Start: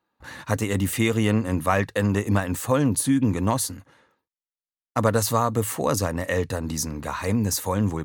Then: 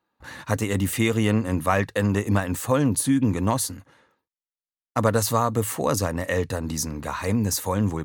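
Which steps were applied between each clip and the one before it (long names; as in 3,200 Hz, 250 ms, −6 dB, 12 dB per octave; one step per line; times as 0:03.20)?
no processing that can be heard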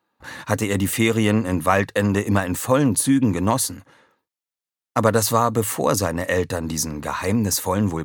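low-shelf EQ 64 Hz −12 dB
level +4 dB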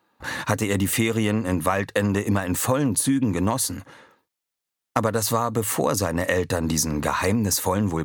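downward compressor 5 to 1, threshold −25 dBFS, peak gain reduction 13.5 dB
level +6 dB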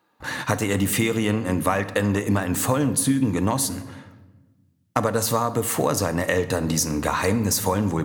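rectangular room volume 860 cubic metres, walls mixed, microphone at 0.45 metres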